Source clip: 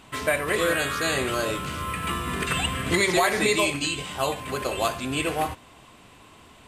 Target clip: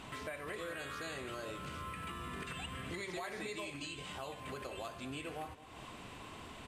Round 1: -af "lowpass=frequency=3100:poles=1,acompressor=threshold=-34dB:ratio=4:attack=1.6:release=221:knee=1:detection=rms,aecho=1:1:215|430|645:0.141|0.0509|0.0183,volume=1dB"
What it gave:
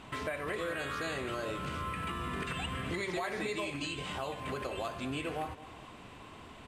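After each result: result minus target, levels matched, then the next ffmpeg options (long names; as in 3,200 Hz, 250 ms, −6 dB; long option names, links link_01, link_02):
downward compressor: peak gain reduction −7 dB; 8,000 Hz band −4.5 dB
-af "lowpass=frequency=3100:poles=1,acompressor=threshold=-43dB:ratio=4:attack=1.6:release=221:knee=1:detection=rms,aecho=1:1:215|430|645:0.141|0.0509|0.0183,volume=1dB"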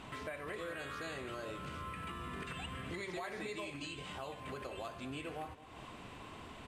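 8,000 Hz band −4.0 dB
-af "lowpass=frequency=6500:poles=1,acompressor=threshold=-43dB:ratio=4:attack=1.6:release=221:knee=1:detection=rms,aecho=1:1:215|430|645:0.141|0.0509|0.0183,volume=1dB"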